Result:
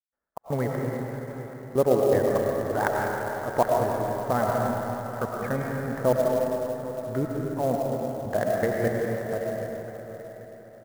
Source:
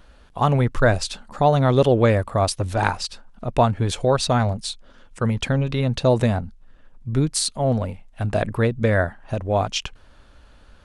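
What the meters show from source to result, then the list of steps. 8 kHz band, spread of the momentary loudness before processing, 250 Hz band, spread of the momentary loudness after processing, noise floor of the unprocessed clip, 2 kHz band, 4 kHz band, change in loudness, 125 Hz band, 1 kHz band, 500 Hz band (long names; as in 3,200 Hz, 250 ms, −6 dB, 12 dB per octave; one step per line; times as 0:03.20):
−13.0 dB, 12 LU, −6.0 dB, 14 LU, −50 dBFS, −6.0 dB, −18.5 dB, −5.5 dB, −11.5 dB, −5.0 dB, −2.5 dB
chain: Butterworth low-pass 2,100 Hz 96 dB per octave
noise gate −40 dBFS, range −27 dB
high-pass filter 410 Hz 6 dB per octave
dynamic equaliser 1,300 Hz, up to −4 dB, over −36 dBFS, Q 0.98
in parallel at −11 dB: dead-zone distortion −42.5 dBFS
on the sum: gate pattern ".xx.xx..xx..." 120 BPM −60 dB
on a send: repeating echo 783 ms, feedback 40%, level −15 dB
on the sum: comb and all-pass reverb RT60 3.3 s, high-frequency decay 0.8×, pre-delay 65 ms, DRR −2 dB
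converter with an unsteady clock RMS 0.022 ms
level −3 dB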